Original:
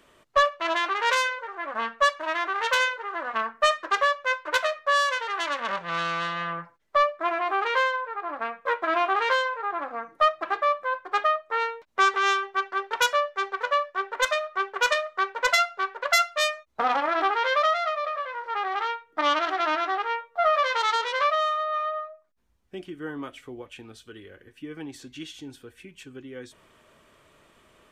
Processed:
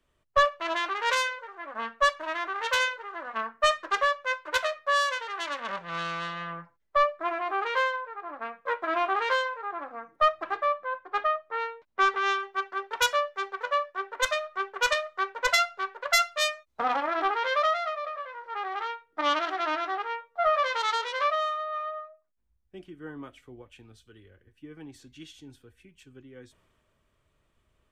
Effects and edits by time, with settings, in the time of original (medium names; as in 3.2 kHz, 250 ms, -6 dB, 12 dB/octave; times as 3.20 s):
10.66–12.40 s: distance through air 93 m
whole clip: bass shelf 140 Hz +6.5 dB; three bands expanded up and down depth 40%; trim -3.5 dB